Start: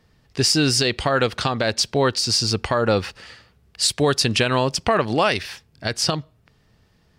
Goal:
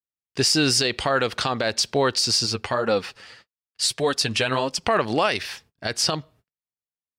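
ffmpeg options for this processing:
-filter_complex "[0:a]asplit=3[a][b][c];[a]afade=t=out:st=2.45:d=0.02[d];[b]flanger=delay=3.8:depth=5.9:regen=22:speed=1.7:shape=sinusoidal,afade=t=in:st=2.45:d=0.02,afade=t=out:st=4.82:d=0.02[e];[c]afade=t=in:st=4.82:d=0.02[f];[d][e][f]amix=inputs=3:normalize=0,agate=range=-47dB:threshold=-50dB:ratio=16:detection=peak,lowshelf=f=190:g=-8.5,alimiter=level_in=10dB:limit=-1dB:release=50:level=0:latency=1,volume=-9dB"

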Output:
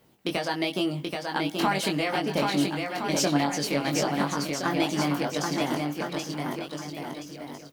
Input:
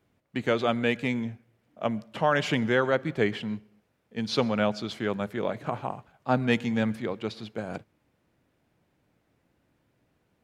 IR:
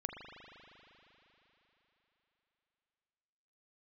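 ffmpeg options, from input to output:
-filter_complex "[0:a]aemphasis=mode=production:type=50fm,acompressor=threshold=-31dB:ratio=6,aphaser=in_gain=1:out_gain=1:delay=1.2:decay=0.23:speed=0.89:type=triangular,asetrate=59535,aresample=44100,asplit=2[a][b];[b]adelay=21,volume=-4dB[c];[a][c]amix=inputs=2:normalize=0,aecho=1:1:780|1365|1804|2133|2380:0.631|0.398|0.251|0.158|0.1,volume=5.5dB"

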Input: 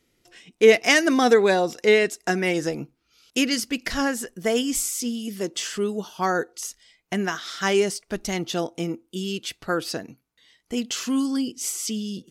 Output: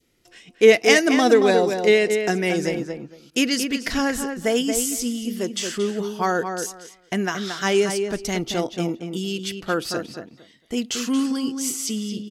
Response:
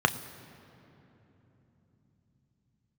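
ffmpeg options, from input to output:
-filter_complex "[0:a]asplit=2[a][b];[b]adelay=227,lowpass=f=2.7k:p=1,volume=-6dB,asplit=2[c][d];[d]adelay=227,lowpass=f=2.7k:p=1,volume=0.18,asplit=2[e][f];[f]adelay=227,lowpass=f=2.7k:p=1,volume=0.18[g];[a][c][e][g]amix=inputs=4:normalize=0,adynamicequalizer=threshold=0.0178:dfrequency=1300:dqfactor=1.2:tfrequency=1300:tqfactor=1.2:attack=5:release=100:ratio=0.375:range=2.5:mode=cutabove:tftype=bell,volume=1.5dB"

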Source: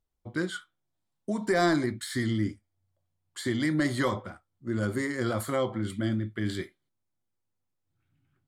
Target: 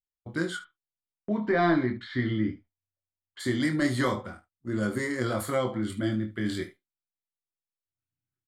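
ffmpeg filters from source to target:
-filter_complex "[0:a]agate=range=-22dB:threshold=-49dB:ratio=16:detection=peak,asplit=3[a][b][c];[a]afade=t=out:st=0.56:d=0.02[d];[b]lowpass=f=3.4k:w=0.5412,lowpass=f=3.4k:w=1.3066,afade=t=in:st=0.56:d=0.02,afade=t=out:st=3.39:d=0.02[e];[c]afade=t=in:st=3.39:d=0.02[f];[d][e][f]amix=inputs=3:normalize=0,aecho=1:1:24|74:0.531|0.158"

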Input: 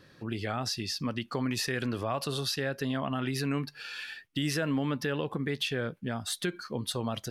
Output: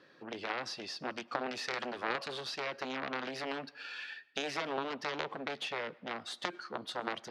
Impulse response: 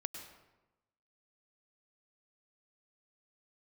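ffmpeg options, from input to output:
-filter_complex "[0:a]highshelf=f=3.7k:g=-6.5,aeval=exprs='0.126*(cos(1*acos(clip(val(0)/0.126,-1,1)))-cos(1*PI/2))+0.0631*(cos(3*acos(clip(val(0)/0.126,-1,1)))-cos(3*PI/2))+0.00398*(cos(6*acos(clip(val(0)/0.126,-1,1)))-cos(6*PI/2))':c=same,highpass=320,lowpass=5.7k,asplit=2[a][b];[1:a]atrim=start_sample=2205[c];[b][c]afir=irnorm=-1:irlink=0,volume=-15.5dB[d];[a][d]amix=inputs=2:normalize=0,volume=4dB"

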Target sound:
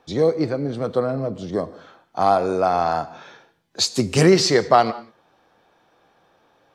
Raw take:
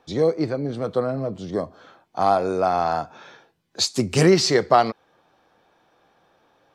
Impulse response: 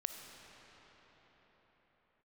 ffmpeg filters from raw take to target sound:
-filter_complex "[0:a]asplit=2[a][b];[1:a]atrim=start_sample=2205,afade=t=out:st=0.2:d=0.01,atrim=end_sample=9261,asetrate=33075,aresample=44100[c];[b][c]afir=irnorm=-1:irlink=0,volume=-4dB[d];[a][d]amix=inputs=2:normalize=0,volume=-2.5dB"

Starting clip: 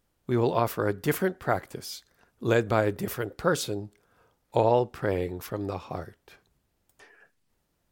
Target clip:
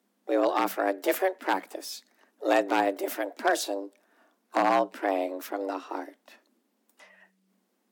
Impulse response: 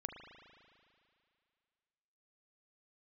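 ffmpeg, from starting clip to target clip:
-filter_complex "[0:a]aeval=exprs='0.188*(abs(mod(val(0)/0.188+3,4)-2)-1)':c=same,asplit=2[a][b];[b]asetrate=66075,aresample=44100,atempo=0.66742,volume=-17dB[c];[a][c]amix=inputs=2:normalize=0,afreqshift=190"

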